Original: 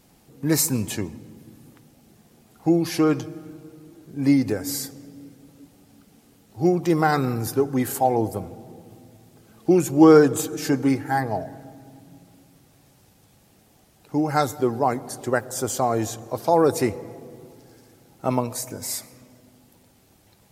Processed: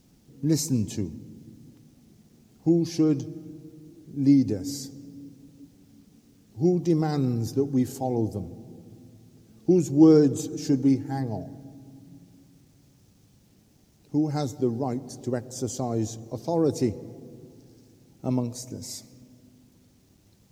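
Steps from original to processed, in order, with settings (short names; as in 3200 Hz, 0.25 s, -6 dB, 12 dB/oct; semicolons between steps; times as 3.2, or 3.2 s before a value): EQ curve 270 Hz 0 dB, 1400 Hz -19 dB, 6100 Hz -3 dB, 10000 Hz -16 dB; bit-crush 11-bit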